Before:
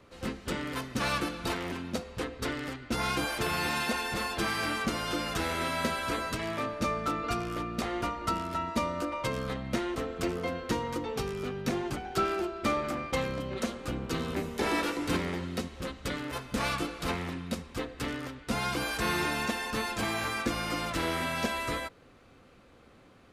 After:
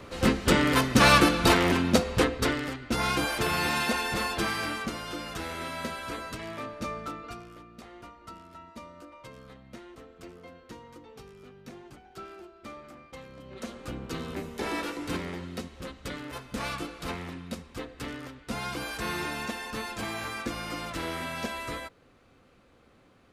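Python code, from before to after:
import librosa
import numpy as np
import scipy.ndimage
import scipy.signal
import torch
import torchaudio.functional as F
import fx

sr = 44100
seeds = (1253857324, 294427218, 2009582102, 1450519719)

y = fx.gain(x, sr, db=fx.line((2.18, 12.0), (2.68, 3.0), (4.3, 3.0), (5.05, -4.5), (6.99, -4.5), (7.63, -15.0), (13.28, -15.0), (13.78, -3.0)))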